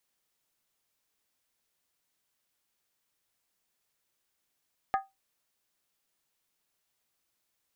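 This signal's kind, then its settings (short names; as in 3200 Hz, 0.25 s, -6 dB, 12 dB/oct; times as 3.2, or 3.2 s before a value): skin hit, lowest mode 778 Hz, decay 0.20 s, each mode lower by 6 dB, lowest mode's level -21 dB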